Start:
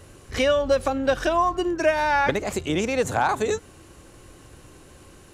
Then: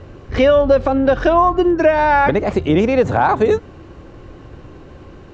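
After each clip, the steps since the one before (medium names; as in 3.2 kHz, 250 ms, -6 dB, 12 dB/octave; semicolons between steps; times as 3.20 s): Bessel low-pass 3.7 kHz, order 8; tilt shelf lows +4.5 dB, about 1.5 kHz; loudness maximiser +10 dB; trim -3.5 dB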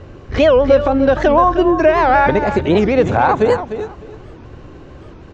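feedback delay 301 ms, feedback 22%, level -10.5 dB; warped record 78 rpm, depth 250 cents; trim +1 dB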